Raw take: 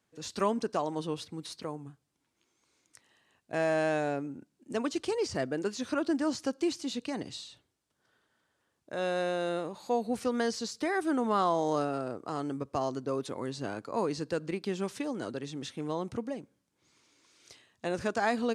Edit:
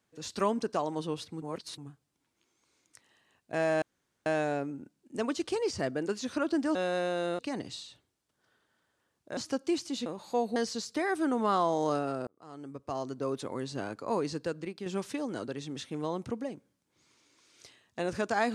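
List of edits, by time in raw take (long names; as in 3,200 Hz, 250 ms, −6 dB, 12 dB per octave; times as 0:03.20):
0:01.42–0:01.78: reverse
0:03.82: splice in room tone 0.44 s
0:06.31–0:07.00: swap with 0:08.98–0:09.62
0:10.12–0:10.42: remove
0:12.13–0:13.19: fade in
0:14.18–0:14.72: fade out, to −7.5 dB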